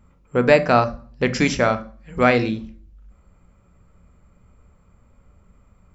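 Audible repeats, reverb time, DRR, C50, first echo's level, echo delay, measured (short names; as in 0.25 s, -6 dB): none, 0.45 s, 10.0 dB, 16.0 dB, none, none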